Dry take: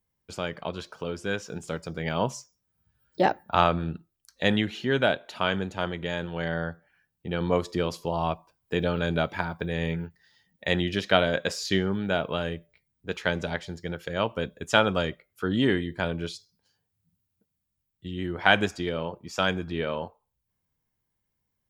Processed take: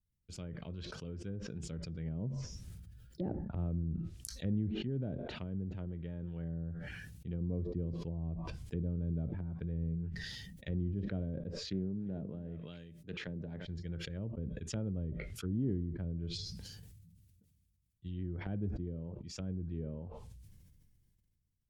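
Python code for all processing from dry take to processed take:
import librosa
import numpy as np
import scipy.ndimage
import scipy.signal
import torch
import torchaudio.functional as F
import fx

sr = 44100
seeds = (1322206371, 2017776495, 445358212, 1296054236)

y = fx.chain(x, sr, fx.highpass(hz=140.0, slope=12),
    fx.echo_single(ms=346, db=-17.0),
    fx.doppler_dist(depth_ms=0.18), at=(11.57, 13.65))
y = fx.env_lowpass_down(y, sr, base_hz=500.0, full_db=-24.5)
y = fx.tone_stack(y, sr, knobs='10-0-1')
y = fx.sustainer(y, sr, db_per_s=26.0)
y = y * 10.0 ** (7.5 / 20.0)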